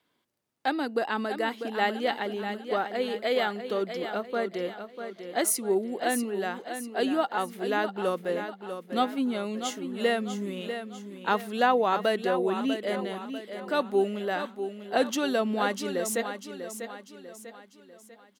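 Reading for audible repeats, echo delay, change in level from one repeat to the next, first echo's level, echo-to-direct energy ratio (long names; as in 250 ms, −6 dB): 4, 645 ms, −7.0 dB, −9.0 dB, −8.0 dB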